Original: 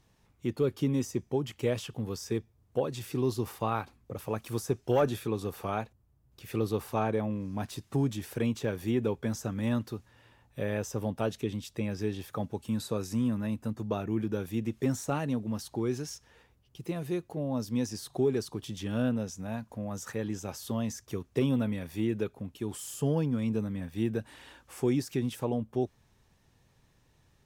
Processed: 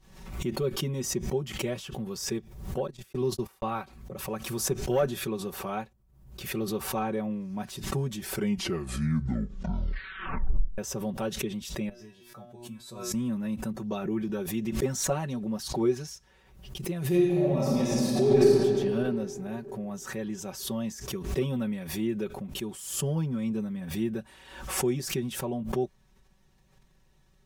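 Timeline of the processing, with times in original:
2.87–3.64 s: gate -35 dBFS, range -53 dB
8.17 s: tape stop 2.61 s
11.89–13.14 s: feedback comb 120 Hz, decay 0.29 s, mix 100%
13.73–16.06 s: sweeping bell 2.8 Hz 390–6100 Hz +8 dB
17.06–18.53 s: reverb throw, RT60 2.7 s, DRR -8 dB
whole clip: bass shelf 62 Hz +9 dB; comb 5.3 ms, depth 83%; swell ahead of each attack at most 70 dB/s; trim -3.5 dB

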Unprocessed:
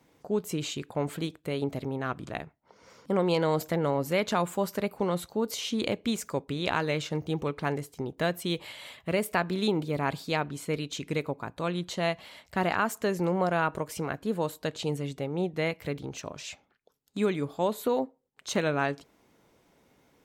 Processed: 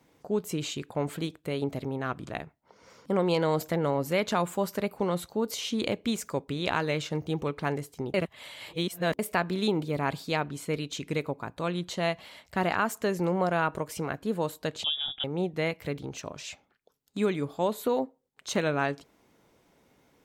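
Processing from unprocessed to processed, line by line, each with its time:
8.14–9.19 s: reverse
14.84–15.24 s: frequency inversion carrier 3.6 kHz

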